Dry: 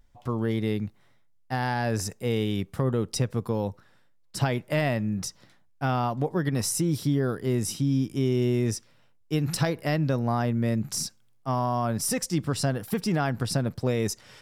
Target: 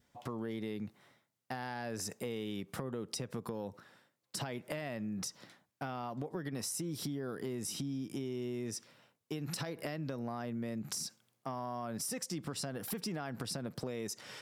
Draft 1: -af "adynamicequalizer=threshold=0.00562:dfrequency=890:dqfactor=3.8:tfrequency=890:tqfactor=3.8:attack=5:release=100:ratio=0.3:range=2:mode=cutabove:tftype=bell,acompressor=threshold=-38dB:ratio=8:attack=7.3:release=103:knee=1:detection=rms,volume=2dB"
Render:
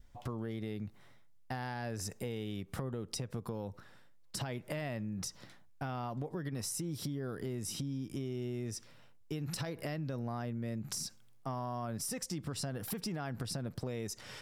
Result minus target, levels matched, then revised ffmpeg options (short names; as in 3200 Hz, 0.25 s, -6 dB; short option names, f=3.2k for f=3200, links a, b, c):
125 Hz band +4.0 dB
-af "adynamicequalizer=threshold=0.00562:dfrequency=890:dqfactor=3.8:tfrequency=890:tqfactor=3.8:attack=5:release=100:ratio=0.3:range=2:mode=cutabove:tftype=bell,highpass=170,acompressor=threshold=-38dB:ratio=8:attack=7.3:release=103:knee=1:detection=rms,volume=2dB"